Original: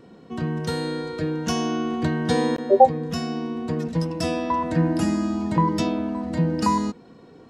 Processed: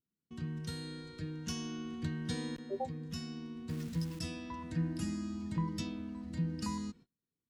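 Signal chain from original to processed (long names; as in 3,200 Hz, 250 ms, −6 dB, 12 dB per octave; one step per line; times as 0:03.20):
0:03.69–0:04.19: converter with a step at zero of −31 dBFS
noise gate −40 dBFS, range −30 dB
guitar amp tone stack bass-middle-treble 6-0-2
level +4 dB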